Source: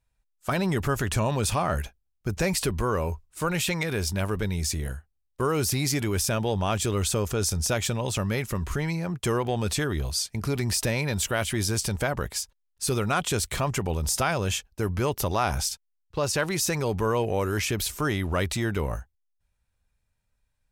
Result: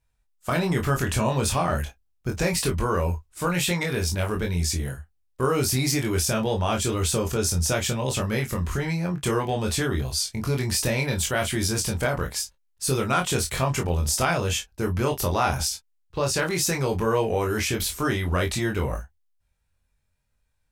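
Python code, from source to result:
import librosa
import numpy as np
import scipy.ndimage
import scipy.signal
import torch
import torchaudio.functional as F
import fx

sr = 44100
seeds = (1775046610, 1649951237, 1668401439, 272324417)

y = fx.wow_flutter(x, sr, seeds[0], rate_hz=2.1, depth_cents=25.0)
y = fx.room_early_taps(y, sr, ms=(23, 36, 51), db=(-3.0, -11.0, -14.5))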